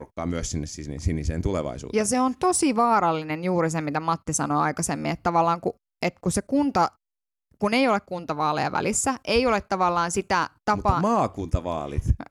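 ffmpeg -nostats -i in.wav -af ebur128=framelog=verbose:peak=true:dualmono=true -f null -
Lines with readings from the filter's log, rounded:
Integrated loudness:
  I:         -21.5 LUFS
  Threshold: -31.5 LUFS
Loudness range:
  LRA:         1.9 LU
  Threshold: -41.3 LUFS
  LRA low:   -22.4 LUFS
  LRA high:  -20.4 LUFS
True peak:
  Peak:       -8.7 dBFS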